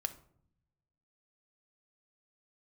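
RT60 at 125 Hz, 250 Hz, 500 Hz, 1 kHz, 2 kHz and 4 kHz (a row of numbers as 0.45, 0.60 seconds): 1.5, 1.2, 0.70, 0.60, 0.40, 0.35 seconds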